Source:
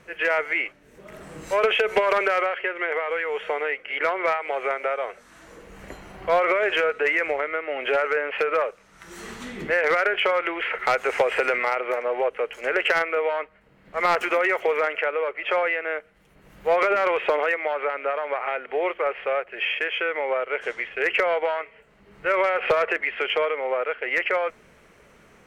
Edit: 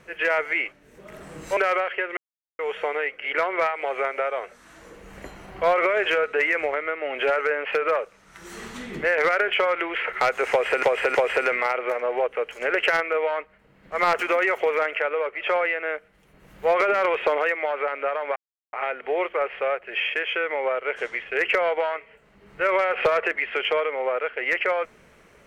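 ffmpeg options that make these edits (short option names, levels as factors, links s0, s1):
-filter_complex "[0:a]asplit=7[s0][s1][s2][s3][s4][s5][s6];[s0]atrim=end=1.572[s7];[s1]atrim=start=2.228:end=2.83,asetpts=PTS-STARTPTS,afade=t=out:st=0.598:d=0.004:c=hsin[s8];[s2]atrim=start=2.83:end=3.25,asetpts=PTS-STARTPTS,volume=0[s9];[s3]atrim=start=3.25:end=11.492,asetpts=PTS-STARTPTS,afade=t=in:d=0.004:c=hsin[s10];[s4]atrim=start=11.168:end=11.492[s11];[s5]atrim=start=11.168:end=18.38,asetpts=PTS-STARTPTS,afade=t=out:st=7.208:d=0.004:c=hsin,apad=pad_dur=0.37[s12];[s6]atrim=start=18.38,asetpts=PTS-STARTPTS,afade=t=in:d=0.004:c=hsin[s13];[s8][s9][s10]concat=n=3:v=0:a=1[s14];[s7][s14]acrossfade=d=0.004:c1=hsin:c2=hsin[s15];[s15][s11]acrossfade=d=0.004:c1=hsin:c2=hsin[s16];[s12][s13]concat=n=2:v=0:a=1[s17];[s16][s17]acrossfade=d=0.004:c1=hsin:c2=hsin"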